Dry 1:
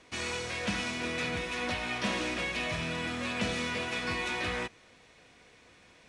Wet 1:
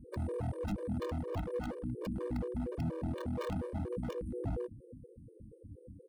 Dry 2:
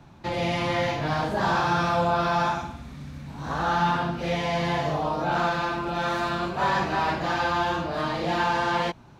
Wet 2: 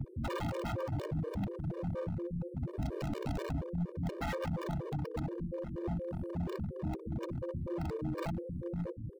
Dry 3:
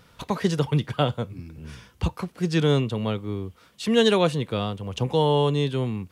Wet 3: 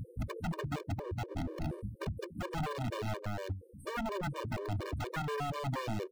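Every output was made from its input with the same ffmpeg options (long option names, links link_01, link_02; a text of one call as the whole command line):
ffmpeg -i in.wav -filter_complex "[0:a]aeval=exprs='0.422*(cos(1*acos(clip(val(0)/0.422,-1,1)))-cos(1*PI/2))+0.0188*(cos(2*acos(clip(val(0)/0.422,-1,1)))-cos(2*PI/2))+0.0266*(cos(4*acos(clip(val(0)/0.422,-1,1)))-cos(4*PI/2))':channel_layout=same,asplit=2[link_01][link_02];[link_02]alimiter=limit=-17.5dB:level=0:latency=1:release=34,volume=-3dB[link_03];[link_01][link_03]amix=inputs=2:normalize=0,flanger=delay=8.1:depth=2.8:regen=49:speed=0.4:shape=triangular,acompressor=threshold=-36dB:ratio=20,afftfilt=real='re*(1-between(b*sr/4096,540,8300))':imag='im*(1-between(b*sr/4096,540,8300))':win_size=4096:overlap=0.75,firequalizer=gain_entry='entry(410,0);entry(1200,12);entry(4100,-15)':delay=0.05:min_phase=1,aecho=1:1:63|126|189:0.112|0.0449|0.018,aeval=exprs='(mod(56.2*val(0)+1,2)-1)/56.2':channel_layout=same,acrossover=split=2600[link_04][link_05];[link_05]acompressor=threshold=-55dB:ratio=4:attack=1:release=60[link_06];[link_04][link_06]amix=inputs=2:normalize=0,equalizer=frequency=65:width_type=o:width=2.7:gain=11,aeval=exprs='0.015*(abs(mod(val(0)/0.015+3,4)-2)-1)':channel_layout=same,afftfilt=real='re*gt(sin(2*PI*4.2*pts/sr)*(1-2*mod(floor(b*sr/1024/310),2)),0)':imag='im*gt(sin(2*PI*4.2*pts/sr)*(1-2*mod(floor(b*sr/1024/310),2)),0)':win_size=1024:overlap=0.75,volume=8.5dB" out.wav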